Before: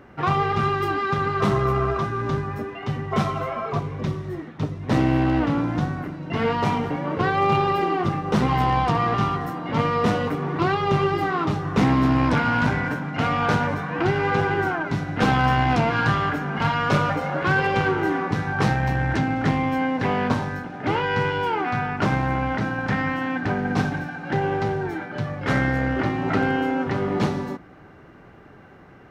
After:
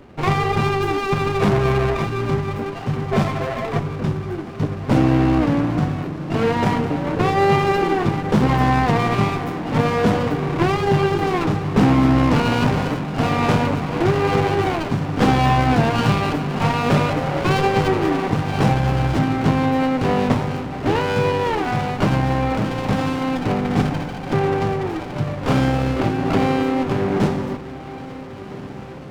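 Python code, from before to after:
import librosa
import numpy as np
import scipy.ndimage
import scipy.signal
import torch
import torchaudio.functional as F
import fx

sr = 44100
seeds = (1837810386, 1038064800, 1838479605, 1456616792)

y = fx.echo_diffused(x, sr, ms=1475, feedback_pct=63, wet_db=-15.0)
y = fx.running_max(y, sr, window=17)
y = y * librosa.db_to_amplitude(4.0)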